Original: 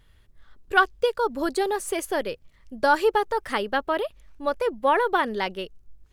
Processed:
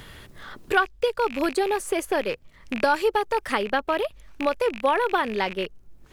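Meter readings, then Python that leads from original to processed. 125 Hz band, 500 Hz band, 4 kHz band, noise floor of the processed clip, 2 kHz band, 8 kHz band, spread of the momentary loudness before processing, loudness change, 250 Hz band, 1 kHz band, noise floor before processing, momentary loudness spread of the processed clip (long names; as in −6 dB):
can't be measured, +0.5 dB, +0.5 dB, −53 dBFS, −0.5 dB, −1.0 dB, 10 LU, 0.0 dB, +2.0 dB, −1.0 dB, −58 dBFS, 11 LU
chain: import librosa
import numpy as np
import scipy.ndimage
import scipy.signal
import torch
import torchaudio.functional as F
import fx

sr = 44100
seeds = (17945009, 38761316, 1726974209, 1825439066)

y = fx.rattle_buzz(x, sr, strikes_db=-46.0, level_db=-25.0)
y = fx.band_squash(y, sr, depth_pct=70)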